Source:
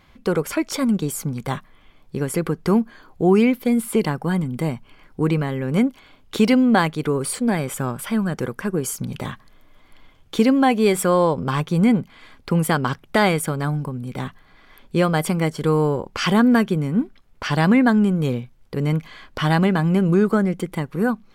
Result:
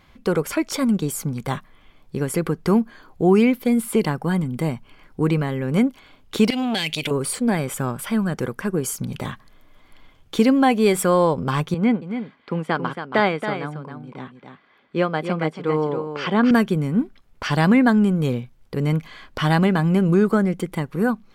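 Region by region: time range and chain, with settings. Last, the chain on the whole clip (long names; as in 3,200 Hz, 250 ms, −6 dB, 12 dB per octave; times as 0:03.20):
0:06.50–0:07.11: high shelf with overshoot 1,800 Hz +13 dB, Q 3 + downward compressor 12 to 1, threshold −16 dBFS + saturating transformer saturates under 1,400 Hz
0:11.74–0:16.51: band-pass filter 200–3,400 Hz + single-tap delay 276 ms −6 dB + expander for the loud parts, over −27 dBFS
whole clip: no processing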